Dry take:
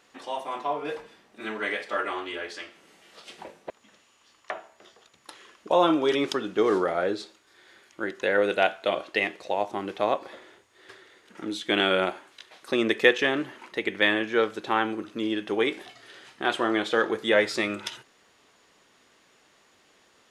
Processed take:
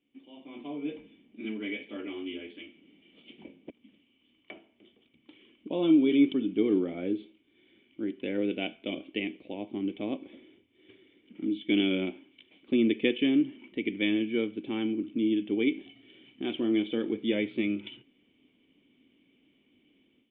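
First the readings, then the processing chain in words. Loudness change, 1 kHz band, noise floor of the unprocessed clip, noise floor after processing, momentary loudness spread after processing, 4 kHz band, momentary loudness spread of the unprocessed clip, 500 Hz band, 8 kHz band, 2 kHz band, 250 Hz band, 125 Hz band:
-3.5 dB, -20.5 dB, -62 dBFS, -69 dBFS, 15 LU, -7.0 dB, 17 LU, -7.5 dB, under -30 dB, -11.5 dB, +3.5 dB, +0.5 dB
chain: cascade formant filter i; level rider gain up to 11.5 dB; trim -2.5 dB

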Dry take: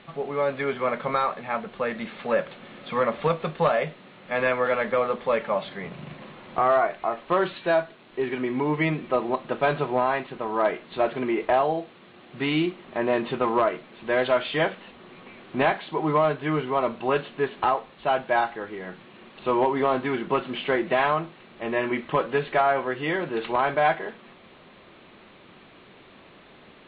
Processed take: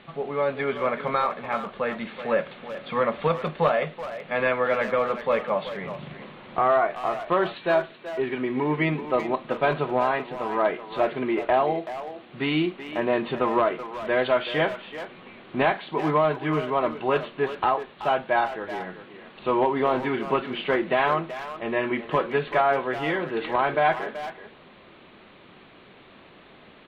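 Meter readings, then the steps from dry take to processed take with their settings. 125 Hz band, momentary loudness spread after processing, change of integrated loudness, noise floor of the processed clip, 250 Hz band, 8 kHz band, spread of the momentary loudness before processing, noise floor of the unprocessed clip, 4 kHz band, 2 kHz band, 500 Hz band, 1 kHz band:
0.0 dB, 11 LU, 0.0 dB, -51 dBFS, 0.0 dB, no reading, 10 LU, -51 dBFS, +0.5 dB, +0.5 dB, +0.5 dB, 0.0 dB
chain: speakerphone echo 380 ms, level -10 dB

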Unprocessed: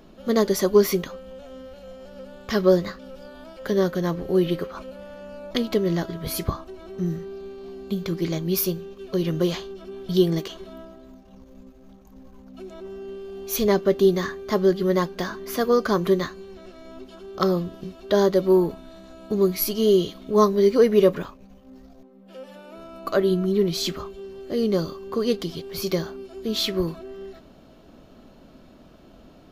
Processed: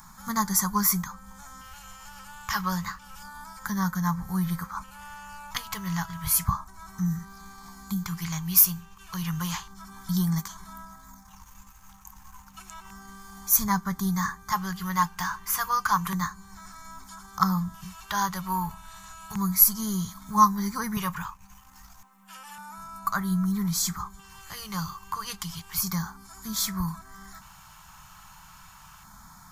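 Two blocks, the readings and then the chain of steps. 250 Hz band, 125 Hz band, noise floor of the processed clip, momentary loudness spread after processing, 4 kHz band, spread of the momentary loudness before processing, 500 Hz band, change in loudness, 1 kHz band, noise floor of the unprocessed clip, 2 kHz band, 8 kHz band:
-5.5 dB, -1.5 dB, -51 dBFS, 23 LU, -4.5 dB, 22 LU, -28.0 dB, -3.5 dB, +4.0 dB, -50 dBFS, +0.5 dB, +8.0 dB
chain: LFO notch square 0.31 Hz 230–2800 Hz; FFT filter 190 Hz 0 dB, 340 Hz -30 dB, 600 Hz -26 dB, 890 Hz +7 dB, 4 kHz -6 dB, 7.3 kHz +11 dB, 11 kHz +9 dB; tape noise reduction on one side only encoder only

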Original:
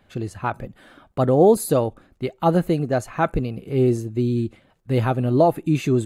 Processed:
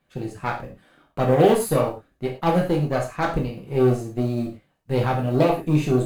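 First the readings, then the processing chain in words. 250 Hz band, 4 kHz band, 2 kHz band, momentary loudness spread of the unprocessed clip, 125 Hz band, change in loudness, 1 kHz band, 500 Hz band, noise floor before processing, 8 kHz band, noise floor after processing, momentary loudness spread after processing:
-1.5 dB, +2.5 dB, +1.5 dB, 15 LU, -1.0 dB, -1.0 dB, -0.5 dB, -1.0 dB, -60 dBFS, -1.5 dB, -68 dBFS, 14 LU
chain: companding laws mixed up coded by A; Chebyshev shaper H 8 -22 dB, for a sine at -4.5 dBFS; gated-style reverb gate 140 ms falling, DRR -1.5 dB; trim -4.5 dB

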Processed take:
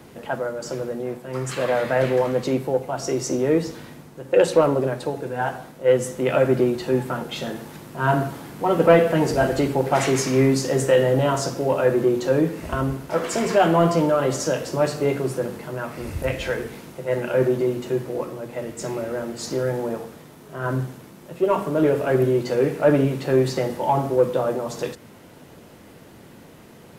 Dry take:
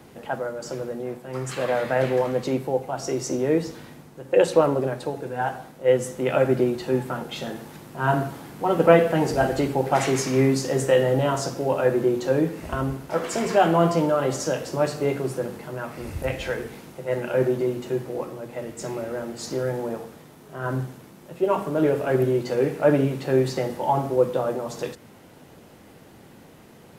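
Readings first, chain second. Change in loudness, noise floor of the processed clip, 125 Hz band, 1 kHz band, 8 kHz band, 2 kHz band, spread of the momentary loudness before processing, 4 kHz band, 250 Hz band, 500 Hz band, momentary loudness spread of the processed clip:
+2.0 dB, -46 dBFS, +2.0 dB, +1.0 dB, +2.5 dB, +2.0 dB, 13 LU, +2.5 dB, +2.0 dB, +2.0 dB, 12 LU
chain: band-stop 790 Hz, Q 18; in parallel at -4 dB: saturation -15 dBFS, distortion -13 dB; on the sum: trim -1.5 dB

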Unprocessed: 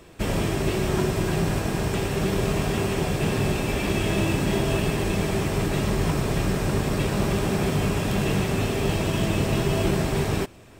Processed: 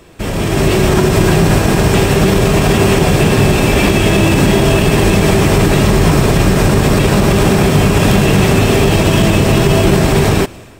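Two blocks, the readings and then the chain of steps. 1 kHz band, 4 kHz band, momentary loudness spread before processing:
+13.5 dB, +13.5 dB, 2 LU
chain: peak limiter -17 dBFS, peak gain reduction 6.5 dB; level rider gain up to 9.5 dB; trim +6.5 dB

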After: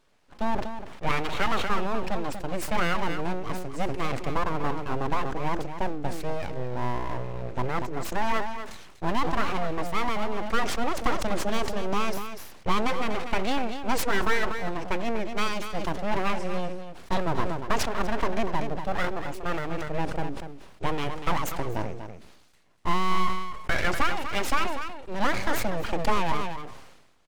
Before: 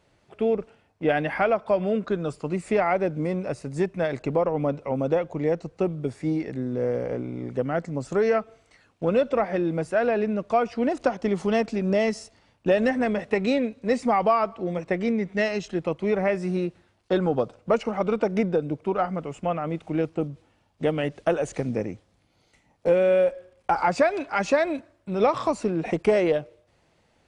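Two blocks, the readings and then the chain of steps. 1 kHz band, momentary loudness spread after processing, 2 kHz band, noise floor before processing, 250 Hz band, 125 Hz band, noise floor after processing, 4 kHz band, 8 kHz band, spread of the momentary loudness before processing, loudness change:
+0.5 dB, 8 LU, +1.0 dB, -65 dBFS, -6.0 dB, -2.5 dB, -50 dBFS, +6.5 dB, no reading, 7 LU, -4.5 dB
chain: full-wave rectifier; delay 242 ms -10 dB; decay stretcher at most 55 dB/s; trim -1 dB

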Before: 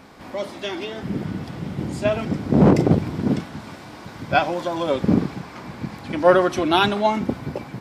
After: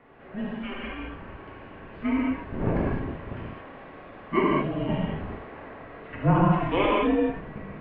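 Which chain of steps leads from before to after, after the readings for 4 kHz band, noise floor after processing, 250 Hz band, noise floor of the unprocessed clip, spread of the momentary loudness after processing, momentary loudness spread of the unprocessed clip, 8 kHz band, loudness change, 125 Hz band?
-11.5 dB, -45 dBFS, -5.5 dB, -40 dBFS, 21 LU, 18 LU, no reading, -5.5 dB, -5.0 dB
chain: mistuned SSB -380 Hz 450–3000 Hz; gated-style reverb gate 240 ms flat, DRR -4.5 dB; trim -7.5 dB

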